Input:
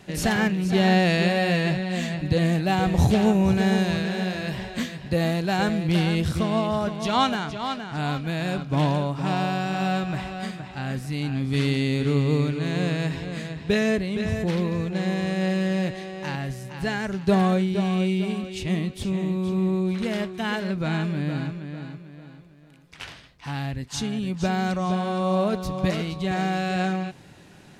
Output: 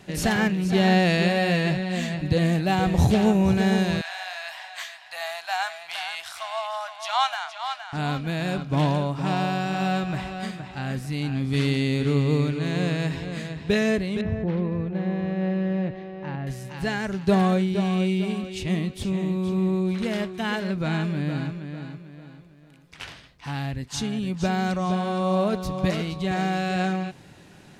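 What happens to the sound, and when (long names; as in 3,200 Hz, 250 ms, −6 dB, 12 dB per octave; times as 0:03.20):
0:04.01–0:07.93: elliptic high-pass filter 700 Hz
0:14.21–0:16.47: head-to-tape spacing loss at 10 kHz 39 dB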